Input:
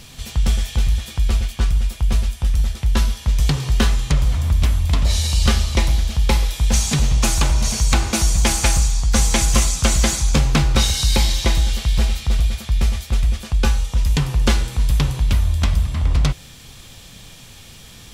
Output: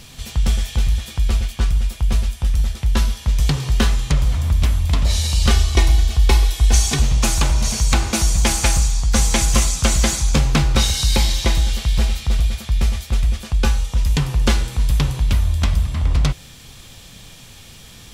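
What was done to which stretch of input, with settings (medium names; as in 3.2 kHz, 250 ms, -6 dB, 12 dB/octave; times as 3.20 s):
5.50–7.02 s: comb 2.7 ms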